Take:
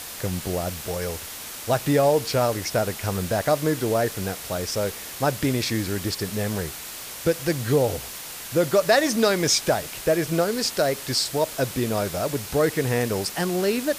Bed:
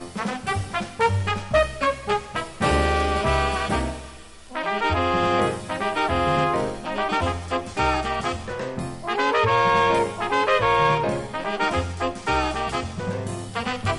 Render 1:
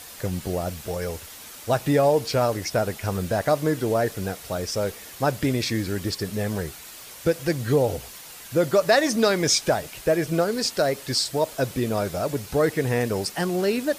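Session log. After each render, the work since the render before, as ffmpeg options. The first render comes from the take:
ffmpeg -i in.wav -af "afftdn=noise_reduction=7:noise_floor=-37" out.wav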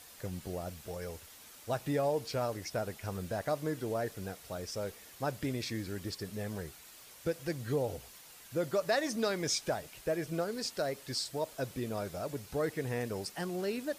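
ffmpeg -i in.wav -af "volume=-12dB" out.wav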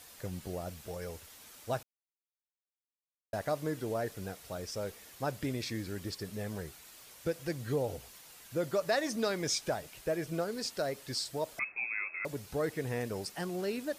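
ffmpeg -i in.wav -filter_complex "[0:a]asettb=1/sr,asplit=3[link_01][link_02][link_03];[link_01]atrim=end=11.594[link_04];[link_02]atrim=start=11.59:end=12.25,asetpts=PTS-STARTPTS,afade=type=in:duration=0.004:curve=qsin,afade=type=out:start_time=0.656:duration=0.004:curve=qsin,lowpass=frequency=2300:width_type=q:width=0.5098,lowpass=frequency=2300:width_type=q:width=0.6013,lowpass=frequency=2300:width_type=q:width=0.9,lowpass=frequency=2300:width_type=q:width=2.563,afreqshift=-2700[link_05];[link_03]atrim=start=12.246[link_06];[link_04][link_05]acrossfade=duration=0.004:curve1=hsin:curve2=qsin[link_07];[link_07][link_06]acrossfade=duration=0.004:curve1=qsin:curve2=hsin,asplit=3[link_08][link_09][link_10];[link_08]atrim=end=1.83,asetpts=PTS-STARTPTS,afade=type=out:start_time=1.826:duration=0.004:curve=hsin[link_11];[link_09]atrim=start=1.83:end=3.33,asetpts=PTS-STARTPTS,volume=0[link_12];[link_10]atrim=start=3.33,asetpts=PTS-STARTPTS,afade=type=in:duration=0.004:curve=hsin[link_13];[link_11][link_12][link_13]concat=n=3:v=0:a=1" out.wav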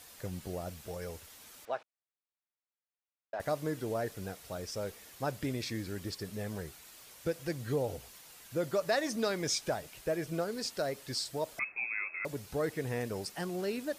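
ffmpeg -i in.wav -filter_complex "[0:a]asettb=1/sr,asplit=3[link_01][link_02][link_03];[link_01]atrim=end=1.654[link_04];[link_02]atrim=start=1.65:end=3.4,asetpts=PTS-STARTPTS,afade=type=in:duration=0.004:curve=qsin,afade=type=out:start_time=1.746:duration=0.004:curve=qsin,highpass=500,lowpass=2700[link_05];[link_03]atrim=start=3.396[link_06];[link_04][link_05]acrossfade=duration=0.004:curve1=hsin:curve2=qsin[link_07];[link_07][link_06]acrossfade=duration=0.004:curve1=qsin:curve2=hsin" out.wav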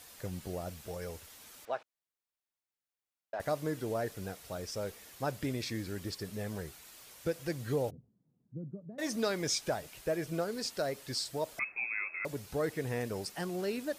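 ffmpeg -i in.wav -filter_complex "[0:a]asplit=3[link_01][link_02][link_03];[link_01]afade=type=out:start_time=7.89:duration=0.02[link_04];[link_02]asuperpass=centerf=170:order=4:qfactor=1.3,afade=type=in:start_time=7.89:duration=0.02,afade=type=out:start_time=8.98:duration=0.02[link_05];[link_03]afade=type=in:start_time=8.98:duration=0.02[link_06];[link_04][link_05][link_06]amix=inputs=3:normalize=0" out.wav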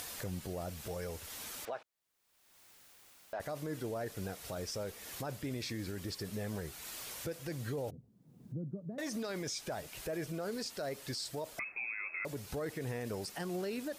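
ffmpeg -i in.wav -af "acompressor=mode=upward:threshold=-35dB:ratio=2.5,alimiter=level_in=7dB:limit=-24dB:level=0:latency=1:release=26,volume=-7dB" out.wav

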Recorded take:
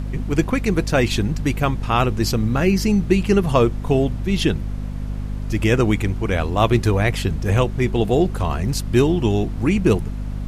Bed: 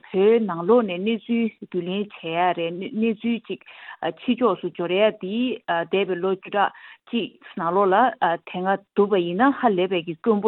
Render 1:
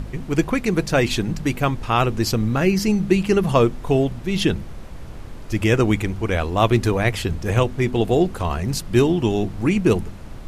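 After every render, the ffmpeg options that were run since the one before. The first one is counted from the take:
ffmpeg -i in.wav -af "bandreject=frequency=50:width_type=h:width=4,bandreject=frequency=100:width_type=h:width=4,bandreject=frequency=150:width_type=h:width=4,bandreject=frequency=200:width_type=h:width=4,bandreject=frequency=250:width_type=h:width=4" out.wav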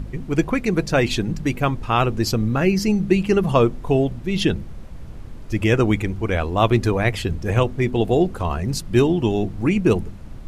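ffmpeg -i in.wav -af "afftdn=noise_reduction=6:noise_floor=-35" out.wav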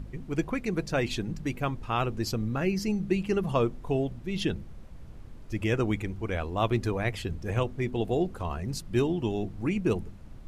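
ffmpeg -i in.wav -af "volume=-9.5dB" out.wav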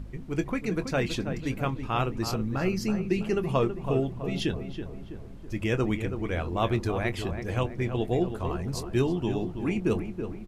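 ffmpeg -i in.wav -filter_complex "[0:a]asplit=2[link_01][link_02];[link_02]adelay=23,volume=-13dB[link_03];[link_01][link_03]amix=inputs=2:normalize=0,asplit=2[link_04][link_05];[link_05]adelay=327,lowpass=frequency=1800:poles=1,volume=-8dB,asplit=2[link_06][link_07];[link_07]adelay=327,lowpass=frequency=1800:poles=1,volume=0.52,asplit=2[link_08][link_09];[link_09]adelay=327,lowpass=frequency=1800:poles=1,volume=0.52,asplit=2[link_10][link_11];[link_11]adelay=327,lowpass=frequency=1800:poles=1,volume=0.52,asplit=2[link_12][link_13];[link_13]adelay=327,lowpass=frequency=1800:poles=1,volume=0.52,asplit=2[link_14][link_15];[link_15]adelay=327,lowpass=frequency=1800:poles=1,volume=0.52[link_16];[link_06][link_08][link_10][link_12][link_14][link_16]amix=inputs=6:normalize=0[link_17];[link_04][link_17]amix=inputs=2:normalize=0" out.wav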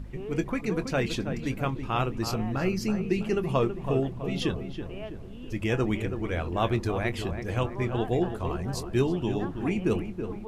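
ffmpeg -i in.wav -i bed.wav -filter_complex "[1:a]volume=-22dB[link_01];[0:a][link_01]amix=inputs=2:normalize=0" out.wav

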